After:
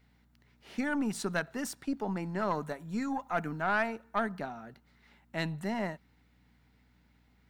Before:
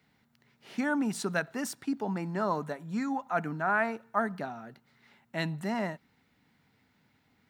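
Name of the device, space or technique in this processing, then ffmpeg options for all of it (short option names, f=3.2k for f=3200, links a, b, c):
valve amplifier with mains hum: -filter_complex "[0:a]asettb=1/sr,asplit=3[a][b][c];[a]atrim=end=2.614[d];[b]atrim=start=2.61:end=3.88,asetpts=PTS-STARTPTS,afade=t=in:d=0.004:c=qsin,afade=t=out:st=1.266:d=0.004:c=qsin,highshelf=f=6.4k:g=5[e];[c]atrim=start=3.876[f];[d][e]acrossfade=d=0.004:c1=hsin:c2=qsin[g];[g][f]acrossfade=d=0.004:c1=qsin:c2=hsin,aeval=exprs='(tanh(8.91*val(0)+0.45)-tanh(0.45))/8.91':c=same,aeval=exprs='val(0)+0.000501*(sin(2*PI*60*n/s)+sin(2*PI*2*60*n/s)/2+sin(2*PI*3*60*n/s)/3+sin(2*PI*4*60*n/s)/4+sin(2*PI*5*60*n/s)/5)':c=same"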